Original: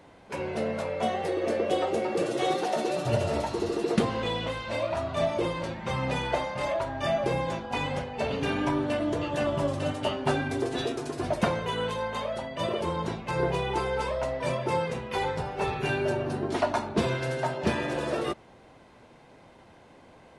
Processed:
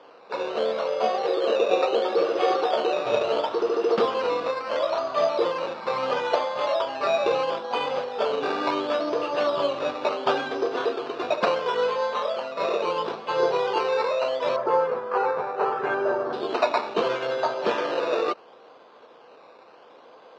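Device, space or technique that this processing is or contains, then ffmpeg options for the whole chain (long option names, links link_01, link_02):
circuit-bent sampling toy: -filter_complex "[0:a]acrusher=samples=11:mix=1:aa=0.000001:lfo=1:lforange=6.6:lforate=0.73,highpass=450,equalizer=frequency=470:width_type=q:width=4:gain=8,equalizer=frequency=1200:width_type=q:width=4:gain=7,equalizer=frequency=2000:width_type=q:width=4:gain=-7,lowpass=frequency=4300:width=0.5412,lowpass=frequency=4300:width=1.3066,asettb=1/sr,asplit=3[link_01][link_02][link_03];[link_01]atrim=end=14.564[link_04];[link_02]atrim=start=14.56:end=16.33,asetpts=PTS-STARTPTS,afade=type=in:duration=0.004:curve=qsin,afade=type=out:start_time=1.766:duration=0.004:curve=qsin,highshelf=frequency=2200:width_type=q:width=1.5:gain=-11.5[link_05];[link_03]atrim=start=16.326[link_06];[link_04][link_05]acrossfade=duration=0.004:curve1=hsin:curve2=qsin[link_07];[link_07][link_06]acrossfade=duration=0.004:curve1=qsin:curve2=hsin,volume=4dB"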